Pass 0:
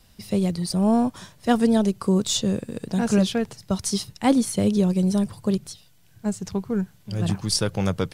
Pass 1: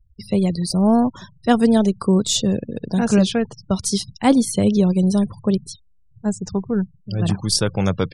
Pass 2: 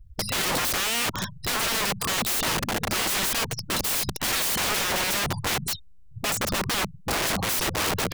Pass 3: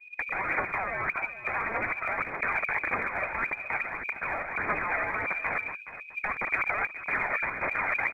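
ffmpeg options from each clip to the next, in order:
-af "afftfilt=real='re*gte(hypot(re,im),0.0112)':imag='im*gte(hypot(re,im),0.0112)':win_size=1024:overlap=0.75,volume=1.58"
-af "alimiter=limit=0.211:level=0:latency=1:release=97,aeval=exprs='(mod(29.9*val(0)+1,2)-1)/29.9':c=same,volume=2.82"
-af "lowpass=f=2100:t=q:w=0.5098,lowpass=f=2100:t=q:w=0.6013,lowpass=f=2100:t=q:w=0.9,lowpass=f=2100:t=q:w=2.563,afreqshift=-2500,aphaser=in_gain=1:out_gain=1:delay=1.7:decay=0.46:speed=1.7:type=triangular,aecho=1:1:421:0.211,volume=0.794"

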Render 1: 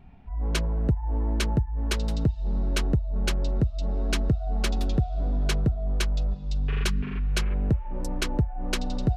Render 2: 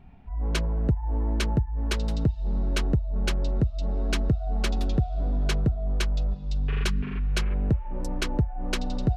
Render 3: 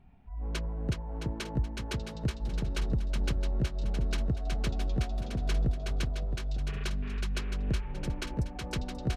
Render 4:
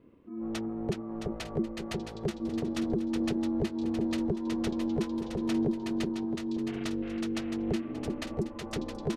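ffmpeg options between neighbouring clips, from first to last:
-af "highshelf=f=7600:g=-5.5"
-af "aecho=1:1:370|666|902.8|1092|1244:0.631|0.398|0.251|0.158|0.1,volume=0.398"
-af "aeval=exprs='val(0)*sin(2*PI*280*n/s)':c=same,volume=1.19"

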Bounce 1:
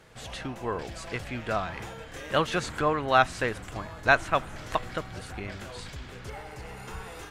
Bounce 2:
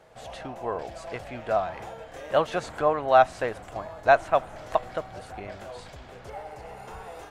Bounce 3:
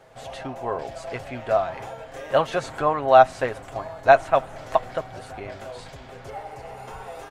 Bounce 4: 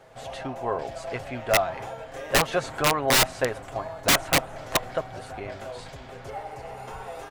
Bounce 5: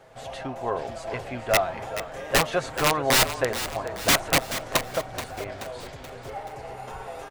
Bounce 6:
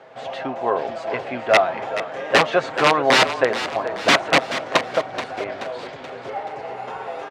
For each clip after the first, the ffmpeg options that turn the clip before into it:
-af "equalizer=f=670:t=o:w=1.1:g=13.5,volume=0.501"
-af "aecho=1:1:7.5:0.41,volume=1.33"
-af "aeval=exprs='(mod(4.22*val(0)+1,2)-1)/4.22':c=same"
-filter_complex "[0:a]asplit=6[s0][s1][s2][s3][s4][s5];[s1]adelay=429,afreqshift=-32,volume=0.266[s6];[s2]adelay=858,afreqshift=-64,volume=0.133[s7];[s3]adelay=1287,afreqshift=-96,volume=0.0668[s8];[s4]adelay=1716,afreqshift=-128,volume=0.0331[s9];[s5]adelay=2145,afreqshift=-160,volume=0.0166[s10];[s0][s6][s7][s8][s9][s10]amix=inputs=6:normalize=0"
-af "highpass=220,lowpass=3700,volume=2.24"

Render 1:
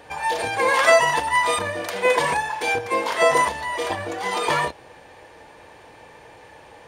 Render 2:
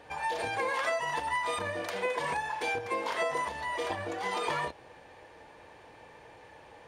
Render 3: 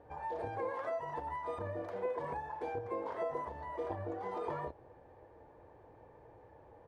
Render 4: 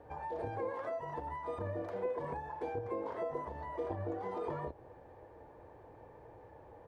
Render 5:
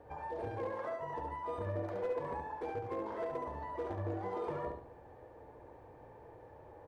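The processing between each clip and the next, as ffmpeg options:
-af "highshelf=f=7300:g=-7,acompressor=threshold=0.0891:ratio=10,volume=0.473"
-af "firequalizer=gain_entry='entry(110,0);entry(180,-7);entry(350,-3);entry(2600,-25);entry(8700,-29)':delay=0.05:min_phase=1,volume=1.12"
-filter_complex "[0:a]acrossover=split=480[s0][s1];[s1]acompressor=threshold=0.00398:ratio=2[s2];[s0][s2]amix=inputs=2:normalize=0,volume=1.41"
-af "volume=37.6,asoftclip=hard,volume=0.0266,aecho=1:1:70|140|210|280:0.562|0.197|0.0689|0.0241,volume=0.891"

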